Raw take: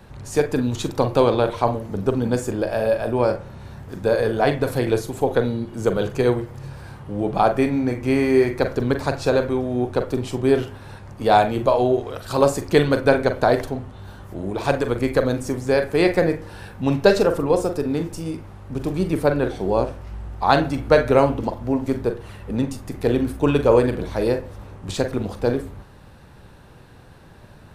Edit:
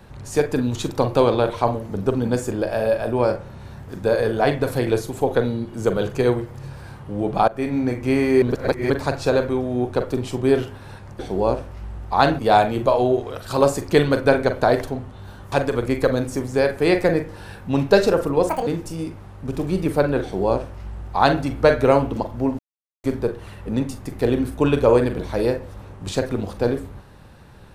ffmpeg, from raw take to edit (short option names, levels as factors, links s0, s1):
-filter_complex "[0:a]asplit=10[s0][s1][s2][s3][s4][s5][s6][s7][s8][s9];[s0]atrim=end=7.48,asetpts=PTS-STARTPTS,afade=t=out:st=7.476:d=0.004:c=hsin:silence=0.112202[s10];[s1]atrim=start=7.48:end=8.422,asetpts=PTS-STARTPTS,afade=t=in:d=0.3:silence=0.112202[s11];[s2]atrim=start=8.418:end=8.902,asetpts=PTS-STARTPTS,areverse[s12];[s3]atrim=start=8.898:end=11.192[s13];[s4]atrim=start=19.488:end=20.692[s14];[s5]atrim=start=11.188:end=14.322[s15];[s6]atrim=start=14.648:end=17.624[s16];[s7]atrim=start=17.62:end=17.94,asetpts=PTS-STARTPTS,asetrate=78939,aresample=44100[s17];[s8]atrim=start=17.936:end=21.86,asetpts=PTS-STARTPTS,afade=t=out:st=3.92:d=0.004:c=hsin,apad=pad_dur=0.45[s18];[s9]atrim=start=21.86,asetpts=PTS-STARTPTS,afade=t=in:d=0.004:c=hsin[s19];[s10][s11]concat=n=2:v=0:a=1[s20];[s20][s12]acrossfade=d=0.004:c1=hsin:c2=hsin[s21];[s21][s13]acrossfade=d=0.004:c1=hsin:c2=hsin[s22];[s22][s14]acrossfade=d=0.004:c1=hsin:c2=hsin[s23];[s23][s15]acrossfade=d=0.004:c1=hsin:c2=hsin[s24];[s24][s16]acrossfade=d=0.004:c1=hsin:c2=hsin[s25];[s25][s17]acrossfade=d=0.004:c1=hsin:c2=hsin[s26];[s18][s19]concat=n=2:v=0:a=1[s27];[s26][s27]acrossfade=d=0.004:c1=hsin:c2=hsin"